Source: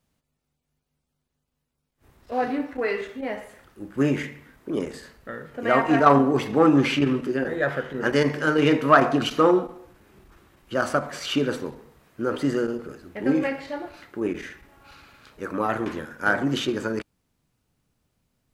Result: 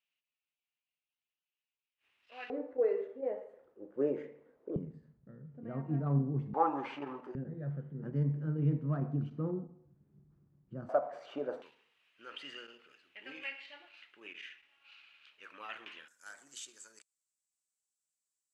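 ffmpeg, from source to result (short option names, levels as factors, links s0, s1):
-af "asetnsamples=n=441:p=0,asendcmd='2.5 bandpass f 490;4.76 bandpass f 150;6.54 bandpass f 870;7.35 bandpass f 150;10.89 bandpass f 660;11.62 bandpass f 2800;16.08 bandpass f 7700',bandpass=f=2700:t=q:w=4.7:csg=0"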